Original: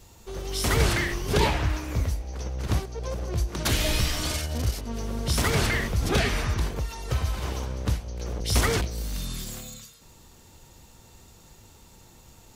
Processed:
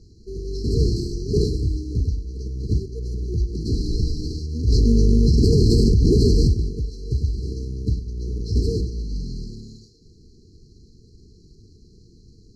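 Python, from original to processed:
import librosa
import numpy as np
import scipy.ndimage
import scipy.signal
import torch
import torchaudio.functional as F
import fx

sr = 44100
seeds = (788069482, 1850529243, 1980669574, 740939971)

p1 = fx.cvsd(x, sr, bps=32000)
p2 = fx.high_shelf(p1, sr, hz=4600.0, db=6.5, at=(0.73, 1.49))
p3 = fx.sample_hold(p2, sr, seeds[0], rate_hz=3200.0, jitter_pct=0)
p4 = p2 + (p3 * 10.0 ** (-3.5 / 20.0))
p5 = fx.brickwall_bandstop(p4, sr, low_hz=470.0, high_hz=4000.0)
p6 = fx.air_absorb(p5, sr, metres=75.0)
p7 = p6 + fx.echo_single(p6, sr, ms=100, db=-14.0, dry=0)
y = fx.env_flatten(p7, sr, amount_pct=100, at=(4.67, 6.52), fade=0.02)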